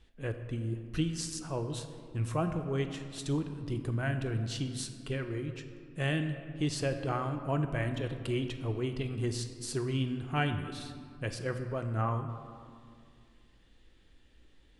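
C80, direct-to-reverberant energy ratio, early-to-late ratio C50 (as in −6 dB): 9.5 dB, 6.5 dB, 8.5 dB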